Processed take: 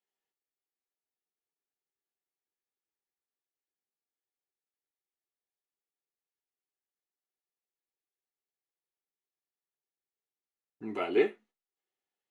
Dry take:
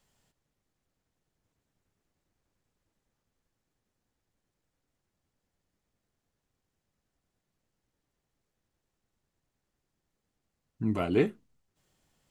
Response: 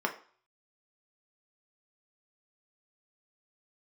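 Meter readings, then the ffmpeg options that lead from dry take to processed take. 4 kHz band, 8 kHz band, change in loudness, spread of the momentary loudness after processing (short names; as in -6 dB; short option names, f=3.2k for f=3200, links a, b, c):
+0.5 dB, n/a, -1.0 dB, 14 LU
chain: -filter_complex "[0:a]agate=range=-18dB:threshold=-55dB:ratio=16:detection=peak[a];[1:a]atrim=start_sample=2205,afade=t=out:st=0.38:d=0.01,atrim=end_sample=17199,asetrate=83790,aresample=44100[b];[a][b]afir=irnorm=-1:irlink=0,volume=-3dB"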